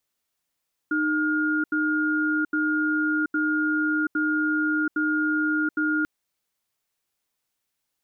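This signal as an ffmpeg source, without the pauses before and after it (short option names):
-f lavfi -i "aevalsrc='0.0668*(sin(2*PI*307*t)+sin(2*PI*1420*t))*clip(min(mod(t,0.81),0.73-mod(t,0.81))/0.005,0,1)':d=5.14:s=44100"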